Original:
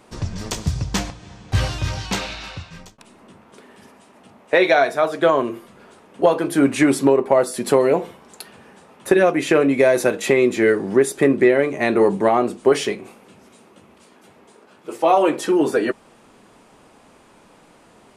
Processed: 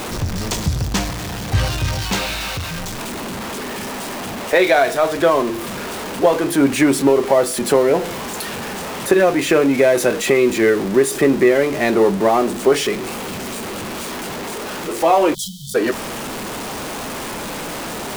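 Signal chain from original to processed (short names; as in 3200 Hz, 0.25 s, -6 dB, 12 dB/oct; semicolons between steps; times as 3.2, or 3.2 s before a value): zero-crossing step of -22 dBFS; spectral delete 15.34–15.75, 210–3000 Hz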